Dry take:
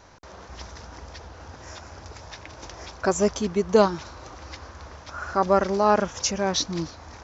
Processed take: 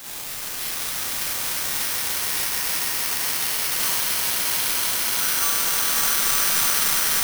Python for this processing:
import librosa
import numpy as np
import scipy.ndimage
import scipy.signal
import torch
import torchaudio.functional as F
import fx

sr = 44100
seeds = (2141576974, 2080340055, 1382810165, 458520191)

p1 = fx.cvsd(x, sr, bps=32000)
p2 = scipy.signal.sosfilt(scipy.signal.bessel(4, 2000.0, 'highpass', norm='mag', fs=sr, output='sos'), p1)
p3 = fx.fold_sine(p2, sr, drive_db=16, ceiling_db=-20.5)
p4 = p2 + F.gain(torch.from_numpy(p3), -7.0).numpy()
p5 = fx.quant_dither(p4, sr, seeds[0], bits=6, dither='triangular')
p6 = fx.ring_mod(p5, sr, carrier_hz=320.0, at=(2.8, 3.55))
p7 = p6 + fx.echo_swell(p6, sr, ms=99, loudest=8, wet_db=-8.0, dry=0)
p8 = fx.rev_schroeder(p7, sr, rt60_s=0.89, comb_ms=33, drr_db=-7.0)
p9 = (np.kron(p8[::6], np.eye(6)[0]) * 6)[:len(p8)]
y = F.gain(torch.from_numpy(p9), -12.5).numpy()